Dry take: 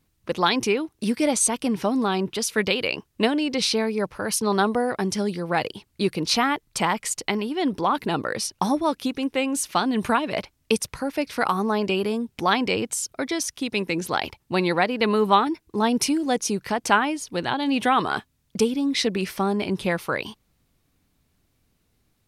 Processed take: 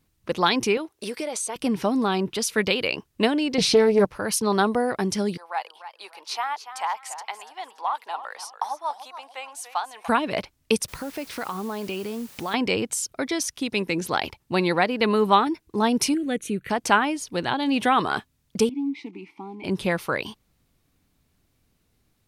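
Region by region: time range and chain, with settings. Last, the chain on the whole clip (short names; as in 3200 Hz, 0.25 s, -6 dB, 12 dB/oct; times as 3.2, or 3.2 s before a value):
0.77–1.56 HPF 48 Hz + resonant low shelf 310 Hz -10 dB, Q 1.5 + compressor 12:1, threshold -25 dBFS
3.58–4.05 low shelf 460 Hz +11 dB + comb 6.7 ms, depth 44% + Doppler distortion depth 0.18 ms
5.37–10.08 ladder high-pass 730 Hz, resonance 55% + warbling echo 0.29 s, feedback 31%, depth 130 cents, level -12 dB
10.88–12.54 compressor 2.5:1, threshold -30 dBFS + requantised 8-bit, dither triangular
16.14–16.7 high shelf 8700 Hz -5.5 dB + fixed phaser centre 2200 Hz, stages 4
18.69–19.64 block floating point 5-bit + vowel filter u
whole clip: dry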